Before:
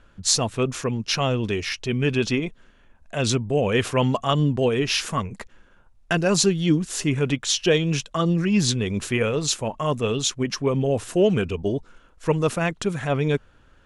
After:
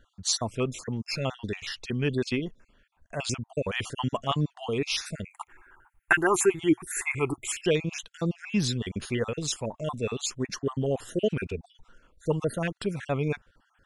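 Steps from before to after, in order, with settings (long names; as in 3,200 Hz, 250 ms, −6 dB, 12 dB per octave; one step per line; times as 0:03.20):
time-frequency cells dropped at random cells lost 39%
0:05.25–0:07.62: drawn EQ curve 120 Hz 0 dB, 200 Hz −12 dB, 360 Hz +9 dB, 540 Hz −9 dB, 830 Hz +12 dB, 2,200 Hz +11 dB, 4,900 Hz −18 dB, 7,500 Hz +4 dB, 12,000 Hz +13 dB
level −5 dB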